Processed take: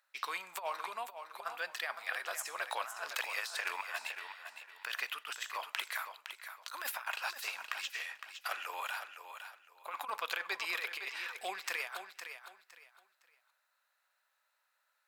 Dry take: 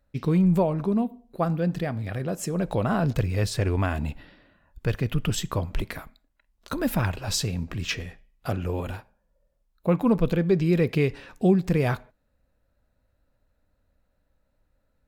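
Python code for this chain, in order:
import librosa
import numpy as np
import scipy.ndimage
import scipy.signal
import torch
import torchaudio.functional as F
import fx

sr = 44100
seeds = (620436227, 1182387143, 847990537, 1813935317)

p1 = scipy.signal.sosfilt(scipy.signal.butter(4, 1000.0, 'highpass', fs=sr, output='sos'), x)
p2 = fx.over_compress(p1, sr, threshold_db=-39.0, ratio=-0.5)
p3 = p2 + fx.echo_feedback(p2, sr, ms=511, feedback_pct=25, wet_db=-9, dry=0)
y = F.gain(torch.from_numpy(p3), 1.0).numpy()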